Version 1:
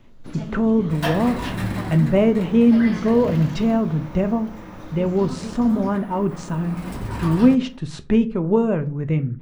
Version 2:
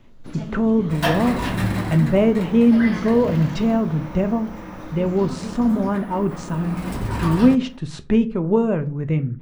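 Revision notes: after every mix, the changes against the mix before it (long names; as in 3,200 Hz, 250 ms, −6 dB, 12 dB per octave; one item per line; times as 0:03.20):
second sound +3.5 dB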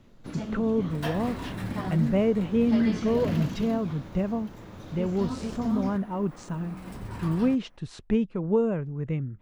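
speech −4.5 dB
second sound −11.5 dB
reverb: off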